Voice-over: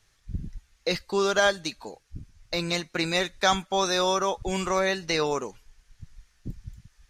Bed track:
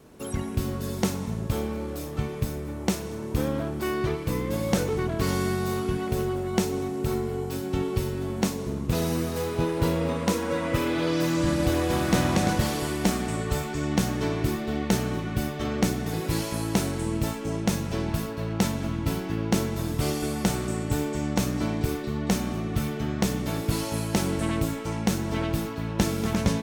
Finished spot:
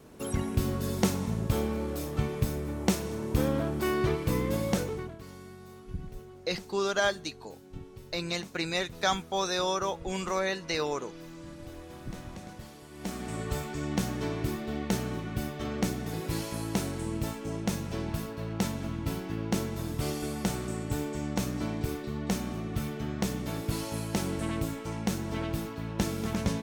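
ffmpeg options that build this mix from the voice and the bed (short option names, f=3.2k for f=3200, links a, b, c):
-filter_complex "[0:a]adelay=5600,volume=-5dB[a];[1:a]volume=15dB,afade=t=out:st=4.45:d=0.76:silence=0.0944061,afade=t=in:st=12.9:d=0.52:silence=0.16788[b];[a][b]amix=inputs=2:normalize=0"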